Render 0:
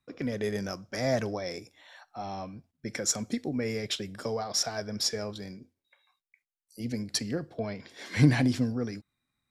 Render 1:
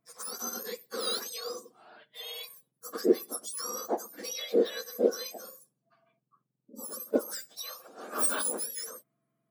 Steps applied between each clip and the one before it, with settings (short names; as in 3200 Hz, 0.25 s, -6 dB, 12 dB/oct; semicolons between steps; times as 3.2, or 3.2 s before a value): spectrum mirrored in octaves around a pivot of 1600 Hz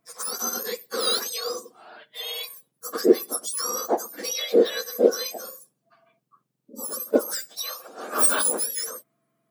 bell 96 Hz -6.5 dB 2.6 oct; gain +8.5 dB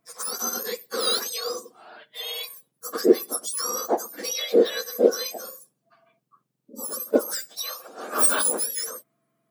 nothing audible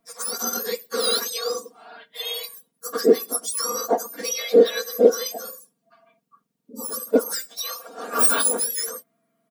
comb 4.3 ms, depth 76%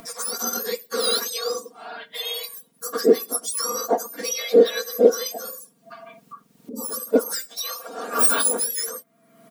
upward compressor, threshold -27 dBFS